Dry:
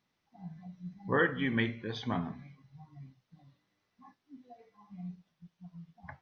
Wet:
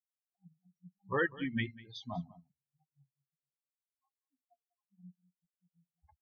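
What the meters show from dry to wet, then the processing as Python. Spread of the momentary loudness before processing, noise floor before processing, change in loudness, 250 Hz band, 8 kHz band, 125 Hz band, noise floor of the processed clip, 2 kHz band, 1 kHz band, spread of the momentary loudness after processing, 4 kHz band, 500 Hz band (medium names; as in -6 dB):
23 LU, -81 dBFS, -2.5 dB, -6.0 dB, no reading, -6.0 dB, under -85 dBFS, -4.0 dB, -4.5 dB, 13 LU, -5.0 dB, -4.5 dB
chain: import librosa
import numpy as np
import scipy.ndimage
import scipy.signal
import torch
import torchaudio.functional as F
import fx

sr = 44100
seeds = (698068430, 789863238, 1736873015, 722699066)

y = fx.bin_expand(x, sr, power=3.0)
y = y + 10.0 ** (-20.0 / 20.0) * np.pad(y, (int(196 * sr / 1000.0), 0))[:len(y)]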